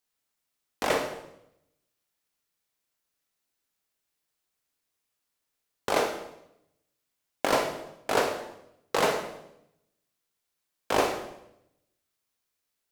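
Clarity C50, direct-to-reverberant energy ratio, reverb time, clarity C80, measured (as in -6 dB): 6.0 dB, 3.0 dB, 0.80 s, 9.0 dB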